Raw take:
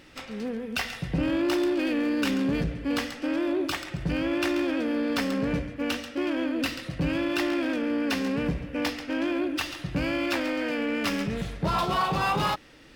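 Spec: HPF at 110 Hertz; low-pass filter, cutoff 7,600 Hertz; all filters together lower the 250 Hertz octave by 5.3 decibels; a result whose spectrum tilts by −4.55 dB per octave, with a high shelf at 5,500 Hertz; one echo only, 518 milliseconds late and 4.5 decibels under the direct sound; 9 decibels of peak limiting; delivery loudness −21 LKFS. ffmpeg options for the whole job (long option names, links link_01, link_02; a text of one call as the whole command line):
ffmpeg -i in.wav -af "highpass=110,lowpass=7600,equalizer=frequency=250:width_type=o:gain=-7,highshelf=frequency=5500:gain=5.5,alimiter=level_in=0.5dB:limit=-24dB:level=0:latency=1,volume=-0.5dB,aecho=1:1:518:0.596,volume=11.5dB" out.wav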